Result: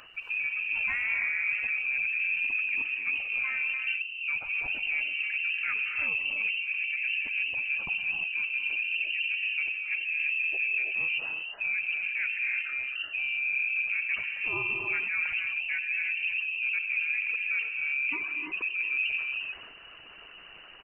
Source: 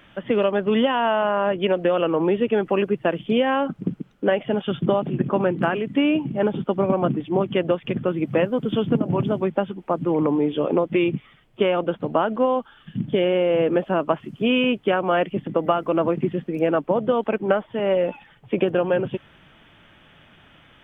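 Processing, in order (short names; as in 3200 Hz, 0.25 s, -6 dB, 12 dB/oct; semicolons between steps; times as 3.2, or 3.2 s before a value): formant sharpening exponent 2; reverb removal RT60 0.52 s; reverse; compressor 5:1, threshold -32 dBFS, peak gain reduction 15.5 dB; reverse; harmoniser -7 st -8 dB, -5 st -4 dB; in parallel at -9 dB: hard clip -28.5 dBFS, distortion -12 dB; on the sum: inverted band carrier 2900 Hz; non-linear reverb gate 0.37 s rising, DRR 3.5 dB; transient shaper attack -2 dB, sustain +5 dB; gain -2.5 dB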